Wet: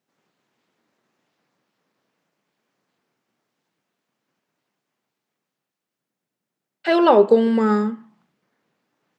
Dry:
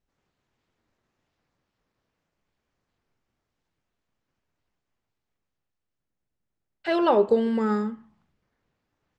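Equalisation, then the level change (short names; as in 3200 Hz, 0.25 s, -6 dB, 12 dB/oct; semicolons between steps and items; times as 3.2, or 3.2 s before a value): HPF 160 Hz 24 dB/oct; +6.5 dB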